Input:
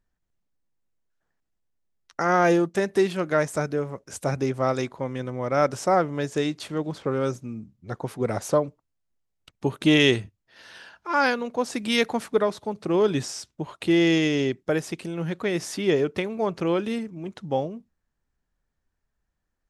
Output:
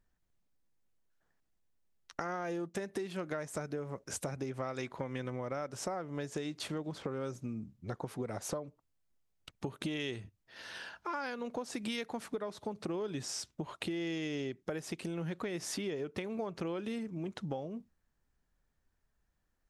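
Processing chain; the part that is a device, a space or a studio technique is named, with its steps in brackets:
serial compression, peaks first (downward compressor 4 to 1, threshold −30 dBFS, peak gain reduction 13 dB; downward compressor 2.5 to 1, threshold −37 dBFS, peak gain reduction 8 dB)
0:04.51–0:05.41: parametric band 2,200 Hz +5 dB 1.5 octaves

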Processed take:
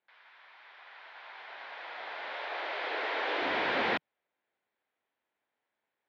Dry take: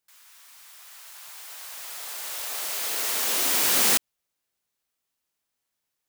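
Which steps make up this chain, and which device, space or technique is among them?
high-frequency loss of the air 200 metres
overdrive pedal into a guitar cabinet (mid-hump overdrive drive 16 dB, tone 1,600 Hz, clips at −16.5 dBFS; loudspeaker in its box 98–3,600 Hz, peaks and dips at 160 Hz −6 dB, 1,200 Hz −7 dB, 2,800 Hz −5 dB)
0:02.33–0:03.42: Butterworth high-pass 270 Hz 72 dB per octave

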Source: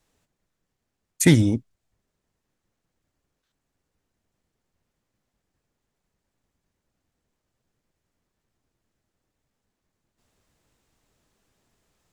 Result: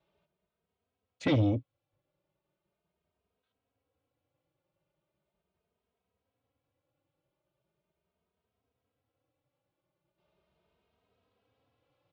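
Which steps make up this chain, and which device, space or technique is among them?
barber-pole flanger into a guitar amplifier (barber-pole flanger 2.9 ms +0.39 Hz; soft clipping −19.5 dBFS, distortion −11 dB; loudspeaker in its box 85–3,500 Hz, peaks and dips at 230 Hz −7 dB, 560 Hz +7 dB, 1,800 Hz −9 dB)

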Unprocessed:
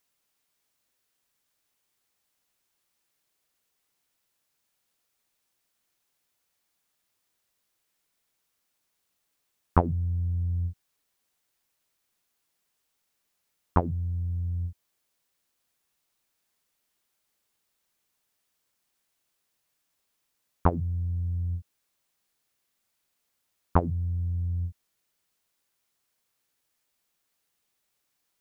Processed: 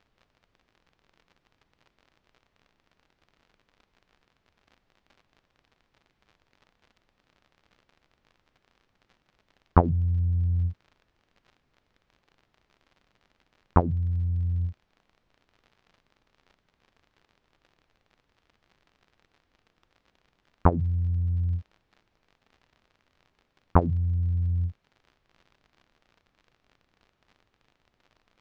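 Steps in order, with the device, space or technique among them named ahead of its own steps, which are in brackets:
vinyl LP (surface crackle 54 per second −43 dBFS; pink noise bed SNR 40 dB)
high-frequency loss of the air 210 metres
level +3.5 dB

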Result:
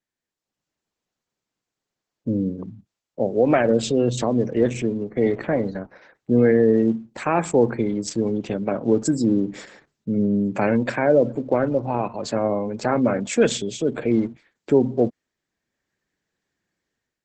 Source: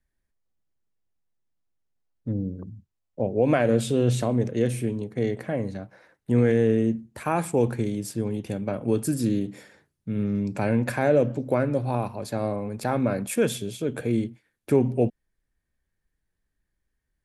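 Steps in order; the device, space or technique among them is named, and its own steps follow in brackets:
noise-suppressed video call (high-pass filter 180 Hz 12 dB per octave; gate on every frequency bin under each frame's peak −30 dB strong; automatic gain control gain up to 13 dB; level −4.5 dB; Opus 12 kbit/s 48,000 Hz)

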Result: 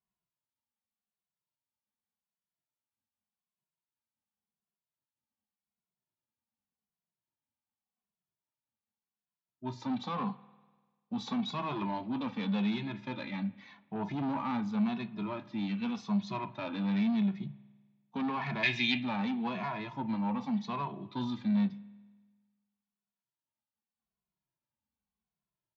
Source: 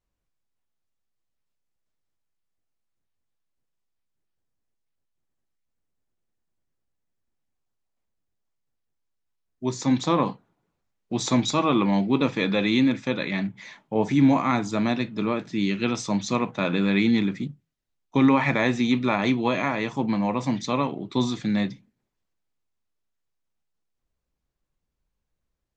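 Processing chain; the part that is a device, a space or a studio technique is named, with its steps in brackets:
barber-pole flanger into a guitar amplifier (barber-pole flanger 2.3 ms −0.87 Hz; soft clipping −23.5 dBFS, distortion −11 dB; loudspeaker in its box 100–4,400 Hz, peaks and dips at 210 Hz +8 dB, 320 Hz −5 dB, 480 Hz −7 dB, 910 Hz +7 dB, 2,000 Hz −4 dB)
0:18.63–0:19.03: high shelf with overshoot 1,600 Hz +11.5 dB, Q 3
spring reverb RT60 1.4 s, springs 49 ms, chirp 75 ms, DRR 18.5 dB
level −6.5 dB

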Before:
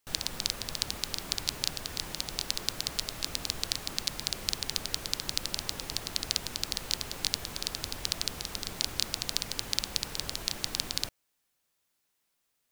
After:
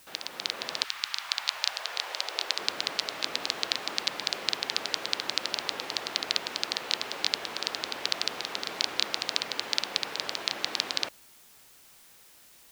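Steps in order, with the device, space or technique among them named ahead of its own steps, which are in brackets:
0:00.83–0:02.57: high-pass filter 1,200 Hz → 340 Hz 24 dB per octave
dictaphone (band-pass filter 390–3,700 Hz; automatic gain control gain up to 9.5 dB; tape wow and flutter; white noise bed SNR 22 dB)

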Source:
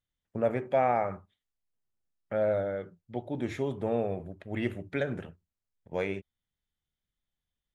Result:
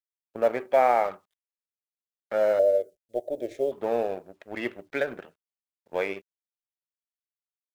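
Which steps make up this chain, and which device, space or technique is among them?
phone line with mismatched companding (band-pass filter 390–3,500 Hz; mu-law and A-law mismatch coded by A)
0:02.59–0:03.72: drawn EQ curve 110 Hz 0 dB, 180 Hz −12 dB, 610 Hz +10 dB, 970 Hz −23 dB, 8,100 Hz +5 dB
level +6.5 dB

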